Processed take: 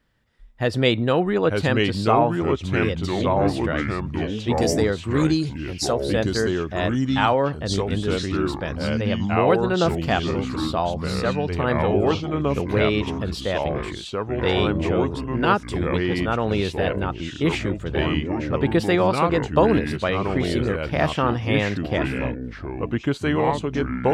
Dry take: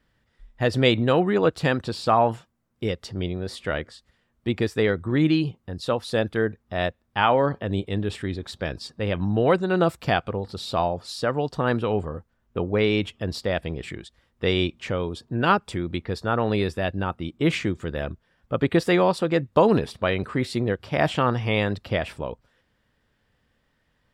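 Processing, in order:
0:04.53–0:06.00: high shelf with overshoot 4,200 Hz +12 dB, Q 3
delay with pitch and tempo change per echo 779 ms, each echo −3 semitones, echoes 3

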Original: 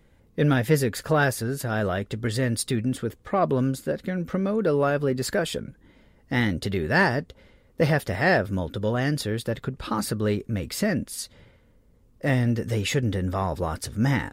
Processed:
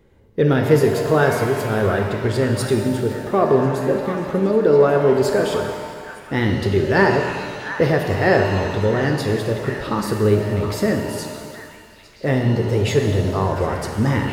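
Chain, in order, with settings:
graphic EQ with 15 bands 100 Hz +6 dB, 400 Hz +10 dB, 1,000 Hz +4 dB, 10,000 Hz −4 dB
echo through a band-pass that steps 714 ms, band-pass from 1,400 Hz, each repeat 0.7 octaves, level −8 dB
reverb with rising layers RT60 1.8 s, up +7 semitones, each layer −8 dB, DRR 3.5 dB

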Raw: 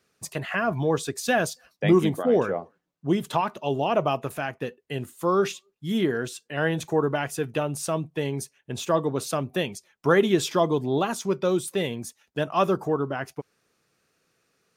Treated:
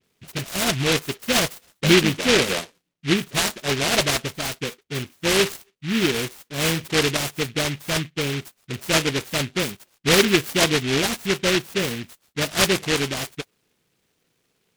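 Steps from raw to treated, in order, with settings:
high-shelf EQ 3,700 Hz −11 dB
all-pass dispersion highs, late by 49 ms, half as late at 1,100 Hz
short delay modulated by noise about 2,400 Hz, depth 0.29 ms
level +3 dB

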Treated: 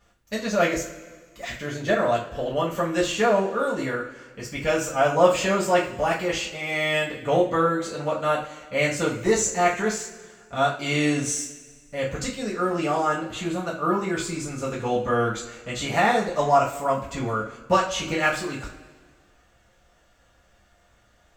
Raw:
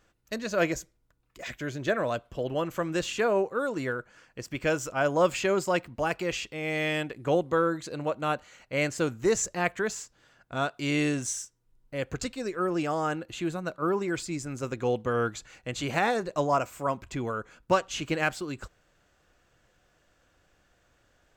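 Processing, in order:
coupled-rooms reverb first 0.31 s, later 1.6 s, from −18 dB, DRR −7 dB
level −2 dB

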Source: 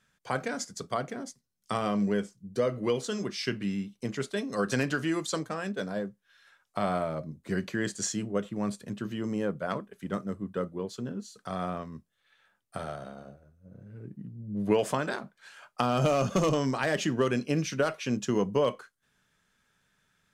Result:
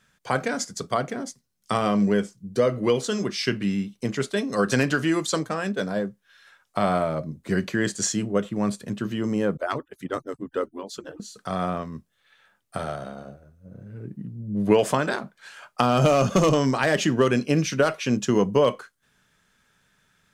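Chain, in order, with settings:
0:09.57–0:11.20: harmonic-percussive split with one part muted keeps percussive
level +6.5 dB

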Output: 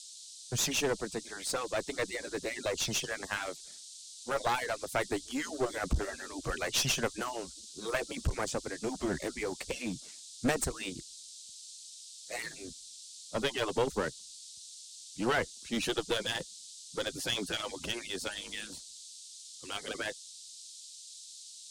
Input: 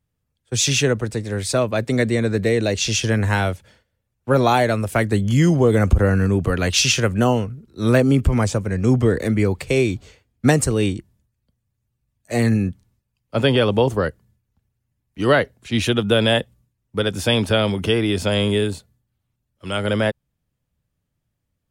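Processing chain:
harmonic-percussive split with one part muted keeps percussive
noise in a band 3,600–9,000 Hz −41 dBFS
asymmetric clip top −23 dBFS
level −8.5 dB

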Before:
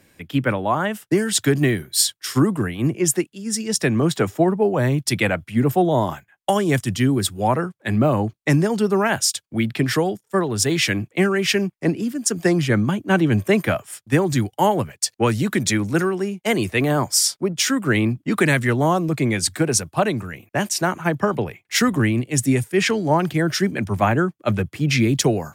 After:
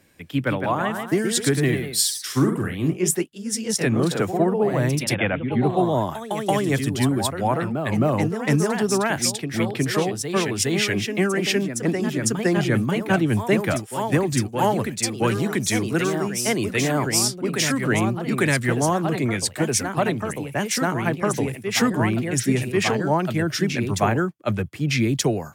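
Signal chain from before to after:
0:05.15–0:05.77: linear-phase brick-wall low-pass 3,600 Hz
delay with pitch and tempo change per echo 186 ms, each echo +1 semitone, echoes 2, each echo −6 dB
level −3 dB

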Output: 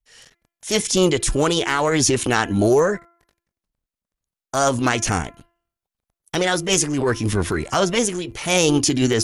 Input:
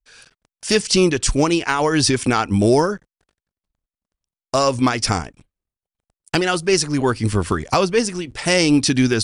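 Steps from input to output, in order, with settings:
transient designer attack −6 dB, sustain +3 dB
hum removal 341.5 Hz, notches 7
formants moved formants +3 semitones

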